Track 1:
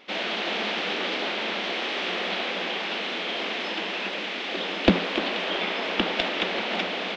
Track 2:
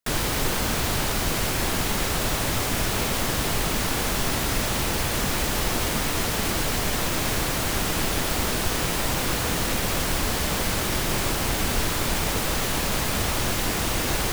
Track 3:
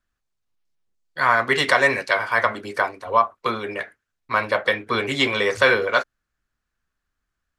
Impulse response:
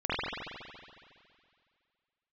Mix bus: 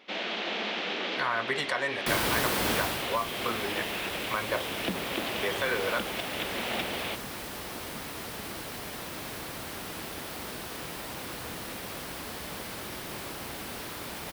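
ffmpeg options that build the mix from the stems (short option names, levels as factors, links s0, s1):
-filter_complex "[0:a]volume=0.596[s0];[1:a]equalizer=f=6900:t=o:w=0.63:g=-5.5,acrossover=split=180|3000[s1][s2][s3];[s1]acompressor=threshold=0.0251:ratio=6[s4];[s4][s2][s3]amix=inputs=3:normalize=0,adelay=2000,volume=0.794,afade=t=out:st=2.71:d=0.36:silence=0.316228[s5];[2:a]volume=0.473,asplit=3[s6][s7][s8];[s6]atrim=end=4.62,asetpts=PTS-STARTPTS,afade=t=out:st=4.616:d=0.004:c=hsin[s9];[s7]atrim=start=4.62:end=5.43,asetpts=PTS-STARTPTS,volume=0[s10];[s8]atrim=start=5.43,asetpts=PTS-STARTPTS,afade=t=in:d=0.004:c=hsin[s11];[s9][s10][s11]concat=n=3:v=0:a=1[s12];[s0][s12]amix=inputs=2:normalize=0,alimiter=limit=0.119:level=0:latency=1:release=265,volume=1[s13];[s5][s13]amix=inputs=2:normalize=0,highpass=56"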